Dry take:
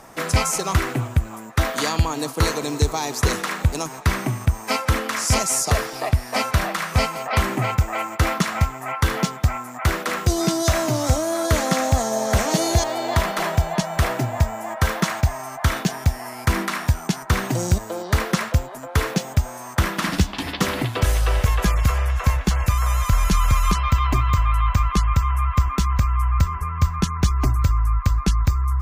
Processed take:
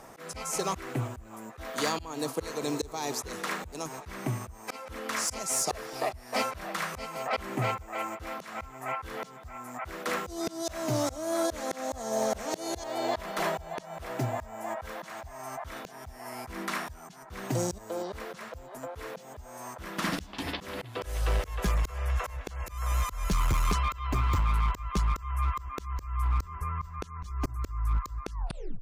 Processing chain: tape stop on the ending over 0.49 s; slow attack 306 ms; hard clipper -16.5 dBFS, distortion -15 dB; peaking EQ 470 Hz +3.5 dB 1 oct; trim -5.5 dB

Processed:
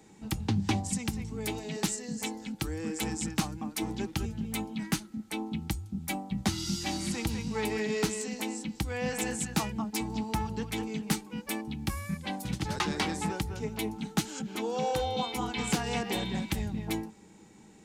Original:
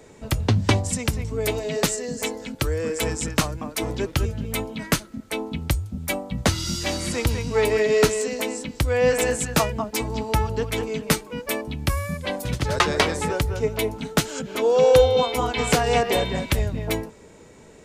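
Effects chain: in parallel at -2 dB: peak limiter -13 dBFS, peak gain reduction 9.5 dB; on the sum: hard clipper -6 dBFS, distortion -29 dB; amplifier tone stack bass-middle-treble 5-5-5; small resonant body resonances 210/310/790 Hz, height 18 dB, ringing for 55 ms; loudspeaker Doppler distortion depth 0.17 ms; trim -5 dB

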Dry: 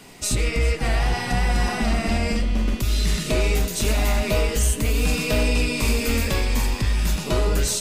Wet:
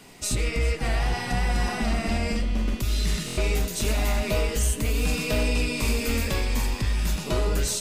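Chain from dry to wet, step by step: buffer glitch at 3.26 s, samples 1024, times 4; trim -3.5 dB

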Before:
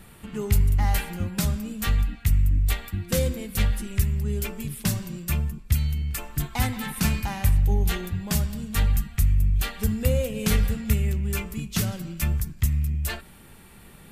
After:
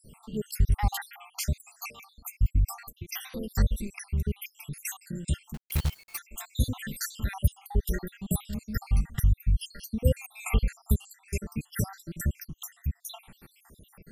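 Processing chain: random holes in the spectrogram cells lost 74%; 1.72–2.18 s: high-pass 720 Hz 12 dB/octave; 5.54–6.19 s: companded quantiser 4-bit

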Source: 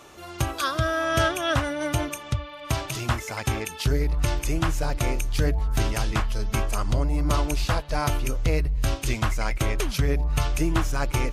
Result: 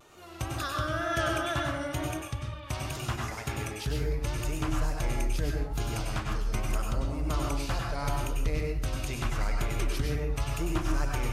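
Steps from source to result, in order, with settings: 5.44–6.06 s: band-stop 1.8 kHz, Q 7; vibrato 2.1 Hz 95 cents; plate-style reverb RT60 0.61 s, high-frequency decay 0.65×, pre-delay 85 ms, DRR 0 dB; trim -9 dB

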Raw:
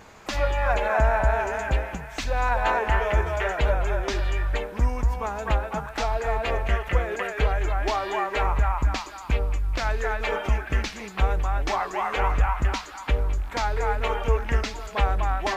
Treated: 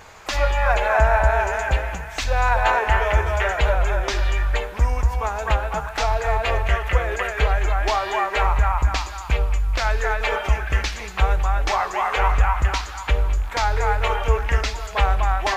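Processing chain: peaking EQ 230 Hz -11.5 dB 1.4 oct; on a send: reverberation RT60 1.1 s, pre-delay 3 ms, DRR 15 dB; on the sum: trim +5.5 dB

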